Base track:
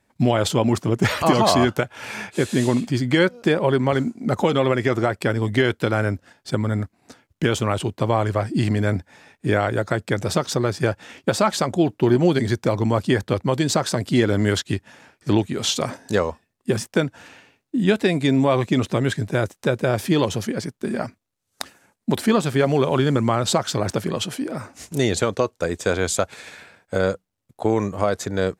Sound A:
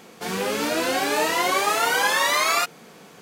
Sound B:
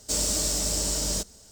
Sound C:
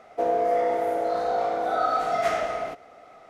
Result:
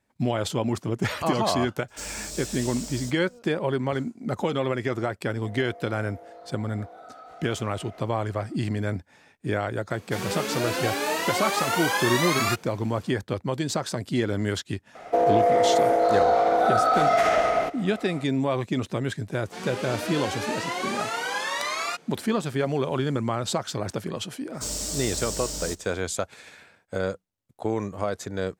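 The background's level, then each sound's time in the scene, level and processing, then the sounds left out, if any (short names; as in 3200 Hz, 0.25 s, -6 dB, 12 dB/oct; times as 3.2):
base track -7 dB
1.88 add B -10.5 dB
5.27 add C -6.5 dB + compressor, threshold -37 dBFS
9.9 add A -4.5 dB
14.95 add C -11.5 dB + maximiser +19 dB
19.31 add A -8 dB + LPF 8600 Hz
24.52 add B -5 dB, fades 0.05 s + vibrato 2.8 Hz 6.3 cents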